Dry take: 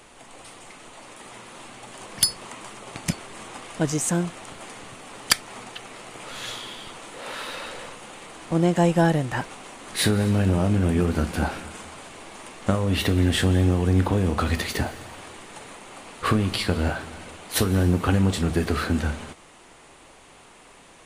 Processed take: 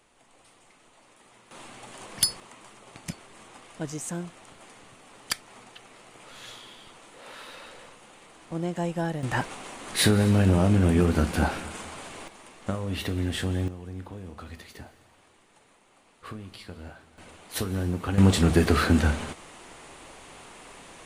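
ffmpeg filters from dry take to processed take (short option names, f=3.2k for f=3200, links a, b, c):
-af "asetnsamples=n=441:p=0,asendcmd='1.51 volume volume -3dB;2.4 volume volume -10dB;9.23 volume volume 0.5dB;12.28 volume volume -8dB;13.68 volume volume -18.5dB;17.18 volume volume -8dB;18.18 volume volume 3dB',volume=-13.5dB"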